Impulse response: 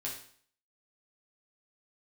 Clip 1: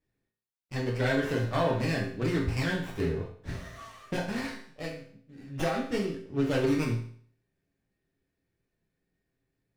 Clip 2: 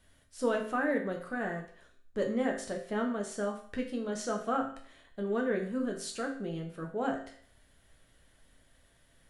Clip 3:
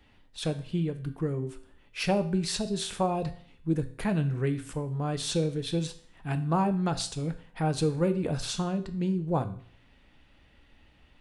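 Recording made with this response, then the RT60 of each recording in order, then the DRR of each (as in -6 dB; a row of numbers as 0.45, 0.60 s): 1; 0.55, 0.55, 0.55 s; -4.0, 1.0, 8.5 dB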